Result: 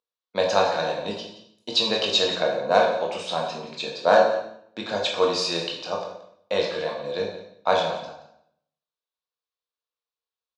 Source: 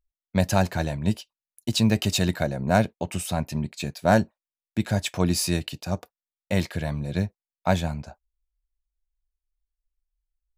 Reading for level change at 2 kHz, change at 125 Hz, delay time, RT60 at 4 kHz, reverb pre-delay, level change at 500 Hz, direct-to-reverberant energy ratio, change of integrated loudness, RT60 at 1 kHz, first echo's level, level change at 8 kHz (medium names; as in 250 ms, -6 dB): +2.5 dB, -17.0 dB, 175 ms, 0.65 s, 15 ms, +6.5 dB, -1.0 dB, +2.0 dB, 0.65 s, -15.0 dB, -6.0 dB